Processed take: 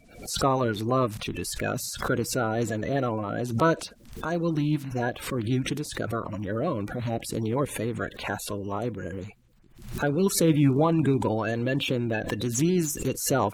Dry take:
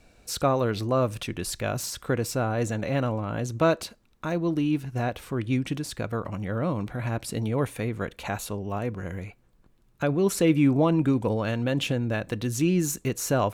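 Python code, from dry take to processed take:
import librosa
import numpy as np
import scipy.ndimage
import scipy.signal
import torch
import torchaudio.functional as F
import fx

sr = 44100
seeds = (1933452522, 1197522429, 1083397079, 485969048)

y = fx.spec_quant(x, sr, step_db=30)
y = fx.pre_swell(y, sr, db_per_s=98.0)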